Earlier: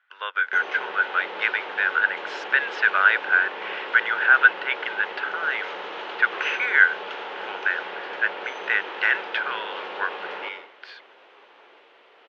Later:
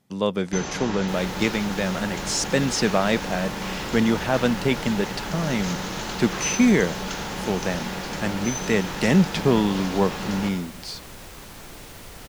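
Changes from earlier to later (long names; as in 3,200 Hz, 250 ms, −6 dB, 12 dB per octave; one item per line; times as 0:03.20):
speech: remove high-pass with resonance 1,500 Hz, resonance Q 12
second sound +7.5 dB
master: remove Chebyshev band-pass filter 400–3,100 Hz, order 3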